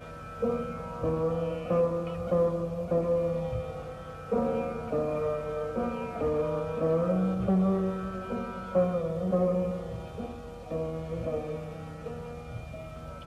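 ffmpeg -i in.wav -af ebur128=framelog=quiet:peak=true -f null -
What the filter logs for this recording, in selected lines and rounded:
Integrated loudness:
  I:         -30.5 LUFS
  Threshold: -40.8 LUFS
Loudness range:
  LRA:         4.6 LU
  Threshold: -50.4 LUFS
  LRA low:   -33.4 LUFS
  LRA high:  -28.7 LUFS
True peak:
  Peak:      -14.4 dBFS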